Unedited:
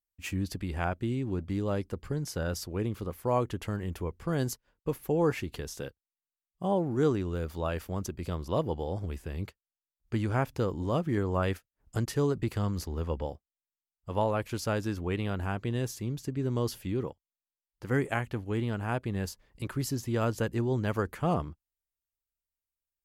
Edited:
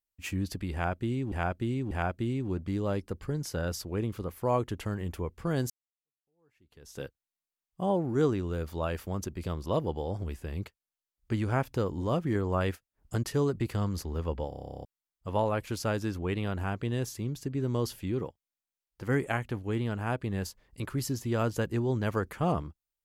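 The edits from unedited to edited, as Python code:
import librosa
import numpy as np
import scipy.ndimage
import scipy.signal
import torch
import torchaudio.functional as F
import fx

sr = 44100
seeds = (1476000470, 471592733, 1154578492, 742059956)

y = fx.edit(x, sr, fx.repeat(start_s=0.73, length_s=0.59, count=3),
    fx.fade_in_span(start_s=4.52, length_s=1.31, curve='exp'),
    fx.stutter_over(start_s=13.31, slice_s=0.03, count=12), tone=tone)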